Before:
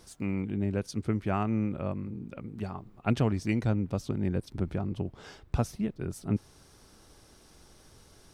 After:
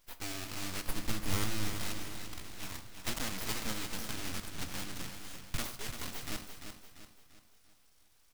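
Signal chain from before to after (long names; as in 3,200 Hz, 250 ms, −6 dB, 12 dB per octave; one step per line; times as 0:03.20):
one scale factor per block 3 bits
noise gate −51 dBFS, range −13 dB
guitar amp tone stack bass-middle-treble 10-0-10
in parallel at 0 dB: brickwall limiter −30.5 dBFS, peak gain reduction 9.5 dB
on the sum: full-wave rectification
0:00.86–0:01.75: low-shelf EQ 310 Hz +9 dB
repeating echo 343 ms, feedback 43%, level −8 dB
on a send at −10.5 dB: convolution reverb RT60 0.65 s, pre-delay 13 ms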